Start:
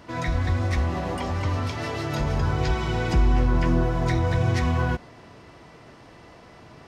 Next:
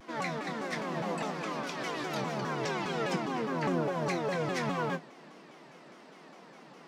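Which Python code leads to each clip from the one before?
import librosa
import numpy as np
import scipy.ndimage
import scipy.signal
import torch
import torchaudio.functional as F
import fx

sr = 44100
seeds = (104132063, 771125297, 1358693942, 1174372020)

y = scipy.signal.sosfilt(scipy.signal.butter(12, 160.0, 'highpass', fs=sr, output='sos'), x)
y = fx.doubler(y, sr, ms=26.0, db=-8.5)
y = fx.vibrato_shape(y, sr, shape='saw_down', rate_hz=4.9, depth_cents=250.0)
y = y * 10.0 ** (-4.5 / 20.0)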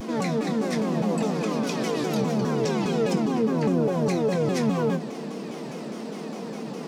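y = fx.peak_eq(x, sr, hz=1700.0, db=-11.5, octaves=2.6)
y = fx.small_body(y, sr, hz=(220.0, 450.0, 2500.0), ring_ms=85, db=9)
y = fx.env_flatten(y, sr, amount_pct=50)
y = y * 10.0 ** (6.5 / 20.0)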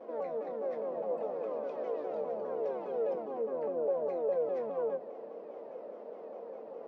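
y = fx.ladder_bandpass(x, sr, hz=600.0, resonance_pct=65)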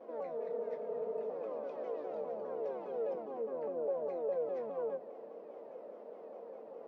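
y = fx.spec_repair(x, sr, seeds[0], start_s=0.41, length_s=0.86, low_hz=220.0, high_hz=1400.0, source='before')
y = y * 10.0 ** (-4.0 / 20.0)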